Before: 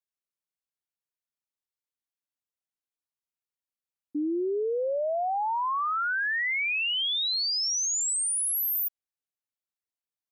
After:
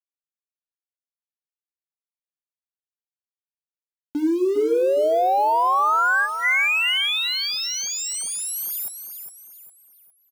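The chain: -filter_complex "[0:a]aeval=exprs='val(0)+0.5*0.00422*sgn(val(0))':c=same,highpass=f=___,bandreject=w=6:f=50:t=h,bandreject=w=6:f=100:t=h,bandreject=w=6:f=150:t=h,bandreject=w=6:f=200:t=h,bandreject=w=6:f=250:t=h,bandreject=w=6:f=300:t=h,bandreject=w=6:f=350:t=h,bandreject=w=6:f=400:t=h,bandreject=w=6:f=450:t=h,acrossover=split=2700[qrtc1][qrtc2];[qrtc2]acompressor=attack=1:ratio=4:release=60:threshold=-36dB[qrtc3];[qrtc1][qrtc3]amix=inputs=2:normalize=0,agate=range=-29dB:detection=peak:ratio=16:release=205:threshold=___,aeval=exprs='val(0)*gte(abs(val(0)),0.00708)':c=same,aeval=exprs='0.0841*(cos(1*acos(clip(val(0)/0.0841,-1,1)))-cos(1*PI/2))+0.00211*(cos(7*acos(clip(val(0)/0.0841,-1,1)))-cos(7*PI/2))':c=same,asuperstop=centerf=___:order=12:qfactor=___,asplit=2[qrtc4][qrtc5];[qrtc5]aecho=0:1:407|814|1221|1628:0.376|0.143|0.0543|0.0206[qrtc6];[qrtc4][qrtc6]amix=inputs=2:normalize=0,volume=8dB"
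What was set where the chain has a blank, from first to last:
140, -52dB, 1800, 6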